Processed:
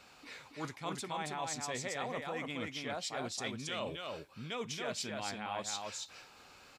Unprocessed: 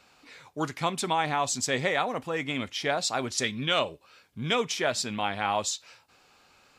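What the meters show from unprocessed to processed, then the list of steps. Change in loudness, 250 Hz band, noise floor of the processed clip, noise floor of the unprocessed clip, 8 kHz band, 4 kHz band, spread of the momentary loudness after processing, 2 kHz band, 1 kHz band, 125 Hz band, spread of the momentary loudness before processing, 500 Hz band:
-11.0 dB, -9.5 dB, -59 dBFS, -62 dBFS, -9.5 dB, -10.5 dB, 9 LU, -11.0 dB, -11.5 dB, -10.0 dB, 8 LU, -10.5 dB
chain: reverse; compressor 4:1, threshold -41 dBFS, peak gain reduction 16.5 dB; reverse; echo 0.276 s -3.5 dB; gain +1 dB

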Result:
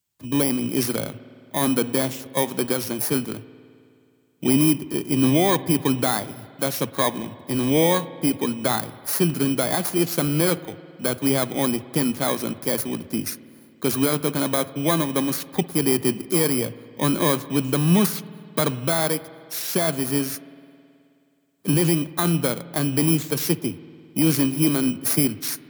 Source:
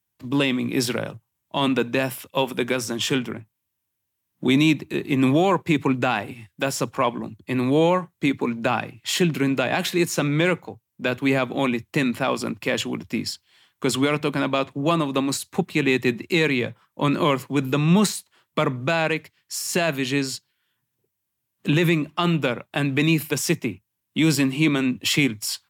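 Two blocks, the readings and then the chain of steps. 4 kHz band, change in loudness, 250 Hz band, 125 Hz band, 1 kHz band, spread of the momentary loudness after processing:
-2.0 dB, +0.5 dB, 0.0 dB, 0.0 dB, -2.0 dB, 9 LU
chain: FFT order left unsorted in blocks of 16 samples; spring tank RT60 2.5 s, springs 53 ms, chirp 50 ms, DRR 16 dB

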